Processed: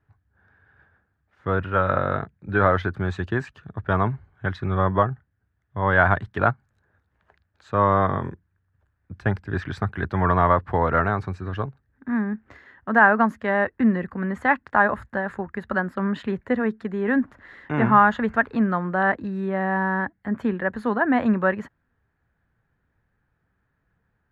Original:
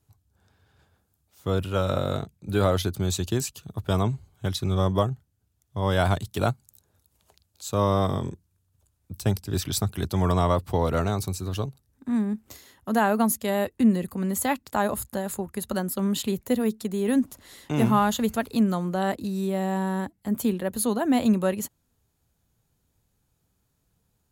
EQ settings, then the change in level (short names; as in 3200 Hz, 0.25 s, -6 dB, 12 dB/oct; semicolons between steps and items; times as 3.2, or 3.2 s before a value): dynamic EQ 1000 Hz, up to +4 dB, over -39 dBFS, Q 1.2; synth low-pass 1700 Hz, resonance Q 4.7; 0.0 dB